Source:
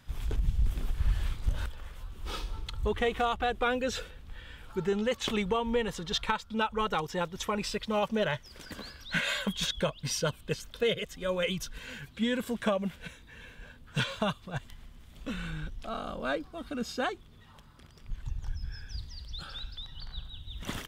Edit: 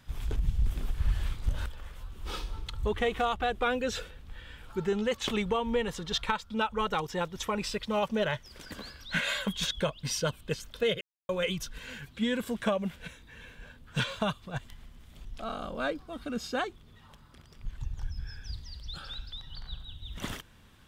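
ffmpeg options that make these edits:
-filter_complex "[0:a]asplit=4[s0][s1][s2][s3];[s0]atrim=end=11.01,asetpts=PTS-STARTPTS,afade=t=out:st=11.006:d=0.004:c=hsin[s4];[s1]atrim=start=11.01:end=11.29,asetpts=PTS-STARTPTS,volume=0[s5];[s2]atrim=start=11.29:end=15.252,asetpts=PTS-STARTPTS,afade=t=in:d=0.004:c=hsin[s6];[s3]atrim=start=15.698[s7];[s4][s5][s6]concat=n=3:v=0:a=1[s8];[s8][s7]acrossfade=d=0.004:c1=hsin:c2=hsin"

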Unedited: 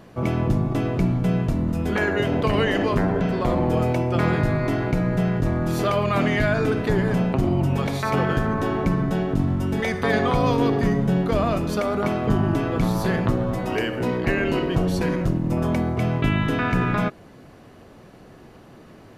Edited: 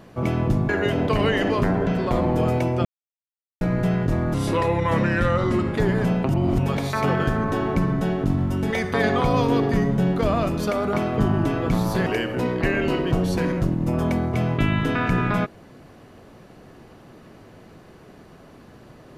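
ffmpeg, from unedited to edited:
-filter_complex "[0:a]asplit=9[s0][s1][s2][s3][s4][s5][s6][s7][s8];[s0]atrim=end=0.692[s9];[s1]atrim=start=2.028:end=4.19,asetpts=PTS-STARTPTS,afade=t=out:st=2.158:d=0.004:c=hsin[s10];[s2]atrim=start=4.19:end=4.95,asetpts=PTS-STARTPTS,volume=0[s11];[s3]atrim=start=4.95:end=5.684,asetpts=PTS-STARTPTS,afade=t=in:d=0.004:c=hsin[s12];[s4]atrim=start=5.68:end=6.87,asetpts=PTS-STARTPTS,asetrate=36603,aresample=44100[s13];[s5]atrim=start=6.866:end=7.392[s14];[s6]atrim=start=7.388:end=7.682,asetpts=PTS-STARTPTS,areverse[s15];[s7]atrim=start=7.678:end=13.162[s16];[s8]atrim=start=13.698[s17];[s10][s11][s12]concat=n=3:v=0:a=1[s18];[s9][s18]acrossfade=d=0.004:c1=hsin:c2=hsin[s19];[s19][s13]acrossfade=d=0.004:c1=hsin:c2=hsin[s20];[s20][s14]acrossfade=d=0.004:c1=hsin:c2=hsin[s21];[s21][s15]acrossfade=d=0.004:c1=hsin:c2=hsin[s22];[s22][s16]acrossfade=d=0.004:c1=hsin:c2=hsin[s23];[s23][s17]acrossfade=d=0.004:c1=hsin:c2=hsin"

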